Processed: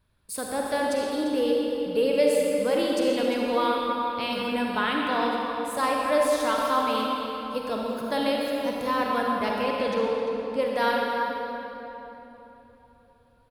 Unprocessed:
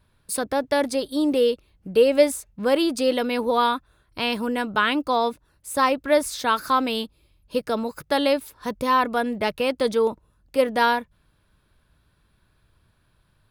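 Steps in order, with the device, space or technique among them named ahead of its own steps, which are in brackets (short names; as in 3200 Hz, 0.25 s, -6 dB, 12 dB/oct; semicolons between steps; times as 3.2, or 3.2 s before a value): 9.62–10.62 air absorption 59 m; cave (echo 0.346 s -14 dB; reverb RT60 3.6 s, pre-delay 41 ms, DRR -2 dB); gain -7 dB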